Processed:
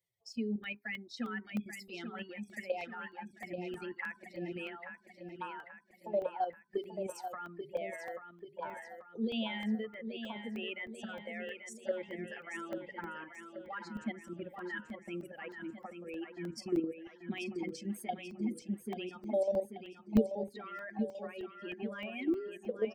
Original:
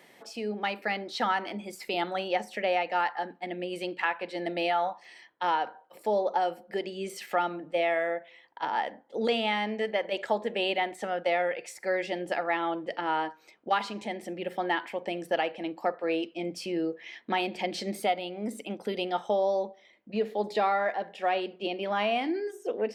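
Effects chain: expander on every frequency bin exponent 2; treble shelf 7.4 kHz -9 dB; in parallel at +2 dB: compression 8:1, threshold -42 dBFS, peak gain reduction 18 dB; on the sum: peak limiter -25 dBFS, peak gain reduction 8.5 dB; level held to a coarse grid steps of 10 dB; de-hum 135.5 Hz, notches 3; small resonant body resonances 220/3800 Hz, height 8 dB, ringing for 85 ms; touch-sensitive phaser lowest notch 250 Hz, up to 2 kHz, full sweep at -31.5 dBFS; on a send: feedback delay 836 ms, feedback 51%, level -8 dB; on the sum: crackling interface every 0.31 s, samples 64, zero, from 0.33 s; trim +2.5 dB

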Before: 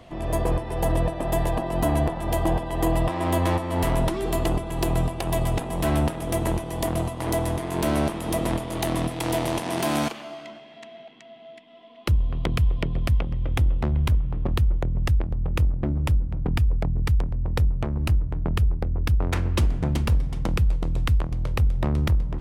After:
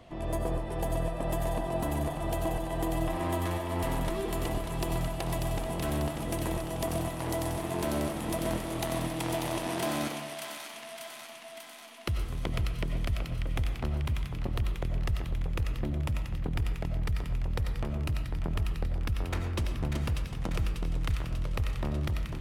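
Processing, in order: compression, threshold -22 dBFS, peak gain reduction 6.5 dB; feedback echo behind a high-pass 592 ms, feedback 66%, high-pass 1.5 kHz, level -4 dB; algorithmic reverb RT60 0.7 s, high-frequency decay 0.5×, pre-delay 55 ms, DRR 6 dB; trim -5.5 dB

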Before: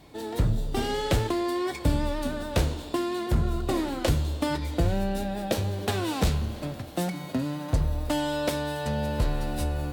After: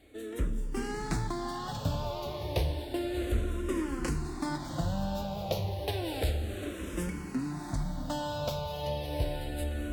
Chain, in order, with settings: on a send: echo that smears into a reverb 710 ms, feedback 42%, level -6 dB; on the sum: barber-pole phaser -0.31 Hz; trim -4 dB

